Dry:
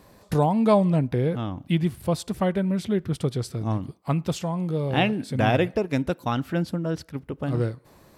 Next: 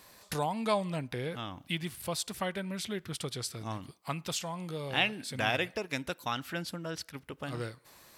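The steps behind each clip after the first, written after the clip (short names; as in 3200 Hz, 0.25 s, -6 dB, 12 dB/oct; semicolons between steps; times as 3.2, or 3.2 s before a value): tilt shelf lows -9 dB, about 920 Hz; in parallel at -3 dB: compressor, threshold -34 dBFS, peak gain reduction 18 dB; on the sum: gain -8.5 dB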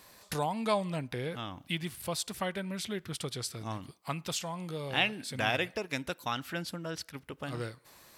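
nothing audible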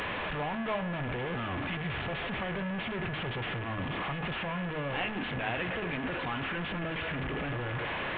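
delta modulation 16 kbps, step -24 dBFS; whine 1700 Hz -36 dBFS; de-hum 53.17 Hz, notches 38; gain -3.5 dB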